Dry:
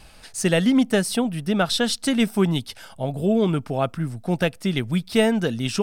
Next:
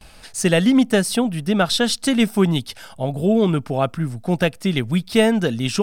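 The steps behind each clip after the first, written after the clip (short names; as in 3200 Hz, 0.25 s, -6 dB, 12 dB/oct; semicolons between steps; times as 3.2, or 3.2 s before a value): gate with hold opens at -40 dBFS; gain +3 dB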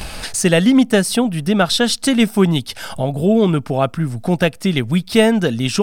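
upward compressor, threshold -19 dBFS; gain +3 dB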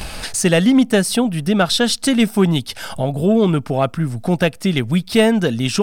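soft clip -2.5 dBFS, distortion -26 dB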